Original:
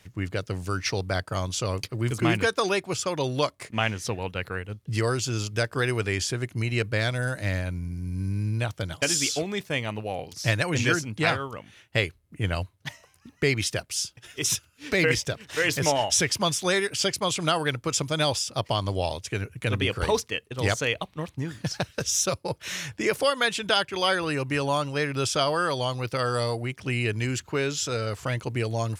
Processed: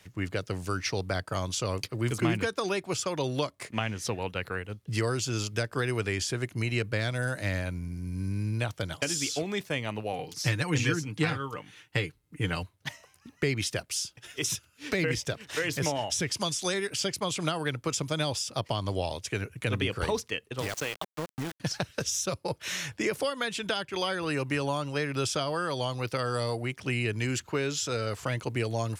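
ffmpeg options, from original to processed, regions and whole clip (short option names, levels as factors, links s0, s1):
-filter_complex "[0:a]asettb=1/sr,asplit=3[s0][s1][s2];[s0]atrim=end=10.124[s3];[s1]atrim=start=10.12:end=12.63,asetpts=PTS-STARTPTS,afade=t=in:d=0.004:c=qsin,afade=t=out:st=2.506:d=0.004:c=qsin,bandreject=f=630:w=5.1,aecho=1:1:6.6:0.5,atrim=end_sample=110691[s4];[s2]atrim=start=12.626[s5];[s3][s4]acrossfade=d=0.004:c1=hsin:c2=qsin[s6];[s6][s5]acrossfade=d=0.004:c1=qsin:c2=hsin,asettb=1/sr,asplit=3[s7][s8][s9];[s7]atrim=end=16.344[s10];[s8]atrim=start=16.34:end=16.74,asetpts=PTS-STARTPTS,afade=t=in:d=0.004:c=qsin,afade=t=out:st=0.396:d=0.004:c=qsin,lowpass=10000,acrossover=split=4400[s11][s12];[s12]acompressor=threshold=0.0141:ratio=4:attack=1:release=60[s13];[s11][s13]amix=inputs=2:normalize=0,bass=f=250:g=-4,treble=f=4000:g=14[s14];[s9]atrim=start=16.736[s15];[s10][s14]acrossfade=d=0.004:c1=hsin:c2=qsin[s16];[s16][s15]acrossfade=d=0.004:c1=qsin:c2=hsin,asettb=1/sr,asplit=3[s17][s18][s19];[s17]atrim=end=20.604[s20];[s18]atrim=start=20.6:end=21.6,asetpts=PTS-STARTPTS,afade=t=in:d=0.004:c=qsin,afade=t=out:st=0.996:d=0.004:c=qsin,acompressor=threshold=0.0501:ratio=5:attack=3.2:release=140:knee=1:detection=peak,aeval=exprs='val(0)*gte(abs(val(0)),0.0237)':c=same[s21];[s19]atrim=start=21.596[s22];[s20][s21]acrossfade=d=0.004:c1=hsin:c2=qsin[s23];[s23][s22]acrossfade=d=0.004:c1=qsin:c2=hsin,lowshelf=f=130:g=-6,acrossover=split=310[s24][s25];[s25]acompressor=threshold=0.0398:ratio=6[s26];[s24][s26]amix=inputs=2:normalize=0"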